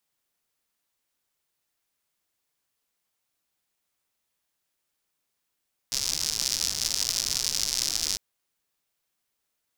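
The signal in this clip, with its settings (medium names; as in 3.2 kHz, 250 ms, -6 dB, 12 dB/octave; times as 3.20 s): rain from filtered ticks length 2.25 s, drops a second 140, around 5.3 kHz, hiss -15 dB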